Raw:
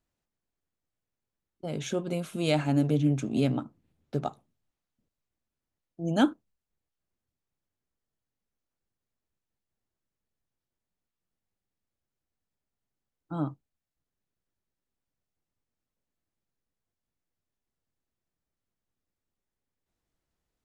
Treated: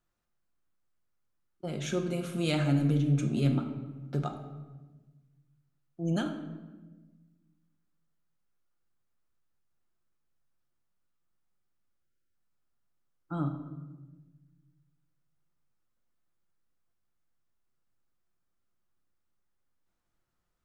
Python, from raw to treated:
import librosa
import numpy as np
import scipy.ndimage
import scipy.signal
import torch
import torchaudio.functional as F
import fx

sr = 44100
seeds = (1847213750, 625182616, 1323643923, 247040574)

y = fx.peak_eq(x, sr, hz=1300.0, db=8.0, octaves=0.63)
y = fx.spec_erase(y, sr, start_s=12.03, length_s=0.32, low_hz=590.0, high_hz=1300.0)
y = fx.dynamic_eq(y, sr, hz=910.0, q=0.8, threshold_db=-41.0, ratio=4.0, max_db=-7)
y = fx.over_compress(y, sr, threshold_db=-25.0, ratio=-1.0)
y = fx.room_shoebox(y, sr, seeds[0], volume_m3=790.0, walls='mixed', distance_m=0.88)
y = y * 10.0 ** (-2.5 / 20.0)